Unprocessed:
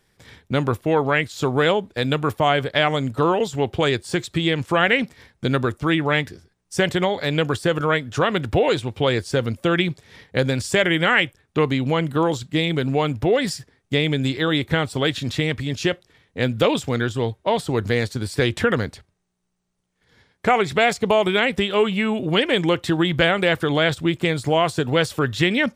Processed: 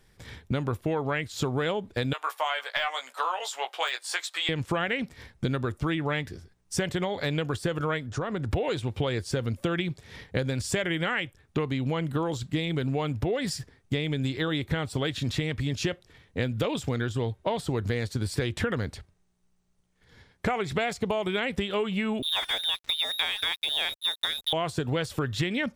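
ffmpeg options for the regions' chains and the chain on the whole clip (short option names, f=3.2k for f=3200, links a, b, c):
-filter_complex "[0:a]asettb=1/sr,asplit=3[a][b][c];[a]atrim=end=2.134[d];[b]atrim=start=2.13:end=4.49,asetpts=PTS-STARTPTS,afade=t=in:d=0.004:c=qsin,afade=t=out:st=2.356:d=0.004:c=qsin,highpass=f=760:w=0.5412,highpass=f=760:w=1.3066,deesser=0.55,asplit=2[e][f];[f]adelay=16,volume=-5dB[g];[e][g]amix=inputs=2:normalize=0,atrim=end_sample=104076[h];[c]atrim=start=4.486[i];[d][h]acrossfade=d=0.004:c1=hsin:c2=qsin[j];[j][i]acrossfade=d=0.004:c1=qsin:c2=hsin,asettb=1/sr,asplit=3[k][l][m];[k]atrim=end=8.064[n];[l]atrim=start=8.06:end=8.51,asetpts=PTS-STARTPTS,afade=t=in:d=0.004:c=qsin,afade=t=out:st=0.446:d=0.004:c=qsin,lowpass=8k,acompressor=threshold=-32dB:ratio=2:attack=3.2:release=140:knee=1:detection=peak,equalizer=f=2.9k:t=o:w=1.1:g=-10[o];[m]atrim=start=8.506[p];[n][o]acrossfade=d=0.004:c1=hsin:c2=qsin[q];[q][p]acrossfade=d=0.004:c1=qsin:c2=hsin,asettb=1/sr,asplit=3[r][s][t];[r]atrim=end=22.224[u];[s]atrim=start=22.22:end=24.53,asetpts=PTS-STARTPTS,afade=t=in:d=0.004:c=qsin,afade=t=out:st=2.306:d=0.004:c=qsin,lowpass=f=3.3k:t=q:w=0.5098,lowpass=f=3.3k:t=q:w=0.6013,lowpass=f=3.3k:t=q:w=0.9,lowpass=f=3.3k:t=q:w=2.563,afreqshift=-3900,aeval=exprs='sgn(val(0))*max(abs(val(0))-0.0266,0)':c=same[v];[t]atrim=start=24.526[w];[u][v]acrossfade=d=0.004:c1=hsin:c2=qsin[x];[x][w]acrossfade=d=0.004:c1=qsin:c2=hsin,lowshelf=f=78:g=11,acompressor=threshold=-25dB:ratio=6"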